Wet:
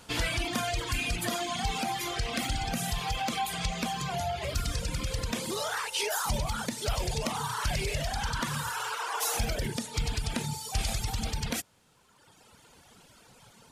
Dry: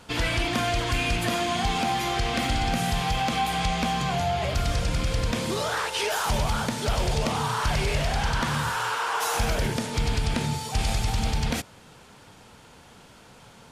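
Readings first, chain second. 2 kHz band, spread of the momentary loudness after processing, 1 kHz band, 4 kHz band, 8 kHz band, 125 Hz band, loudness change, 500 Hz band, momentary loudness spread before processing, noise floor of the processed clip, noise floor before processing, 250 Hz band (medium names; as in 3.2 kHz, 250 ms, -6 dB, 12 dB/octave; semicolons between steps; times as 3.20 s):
-5.5 dB, 4 LU, -7.0 dB, -4.5 dB, -1.0 dB, -7.0 dB, -5.5 dB, -6.5 dB, 2 LU, -59 dBFS, -51 dBFS, -6.5 dB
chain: reverb removal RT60 1.7 s; treble shelf 5.3 kHz +8.5 dB; trim -4 dB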